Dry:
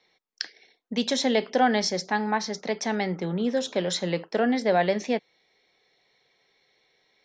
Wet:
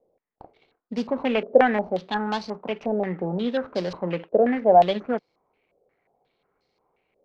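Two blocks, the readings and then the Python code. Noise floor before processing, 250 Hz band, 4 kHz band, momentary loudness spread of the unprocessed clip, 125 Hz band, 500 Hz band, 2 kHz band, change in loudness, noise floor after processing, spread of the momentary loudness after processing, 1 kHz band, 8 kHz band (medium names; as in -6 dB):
-70 dBFS, 0.0 dB, -7.0 dB, 8 LU, 0.0 dB, +4.5 dB, -1.0 dB, +2.5 dB, -75 dBFS, 13 LU, +4.0 dB, under -20 dB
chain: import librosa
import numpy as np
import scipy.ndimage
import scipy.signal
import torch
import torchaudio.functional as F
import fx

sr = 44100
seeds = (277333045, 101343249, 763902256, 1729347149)

y = scipy.signal.medfilt(x, 25)
y = fx.filter_held_lowpass(y, sr, hz=5.6, low_hz=560.0, high_hz=4900.0)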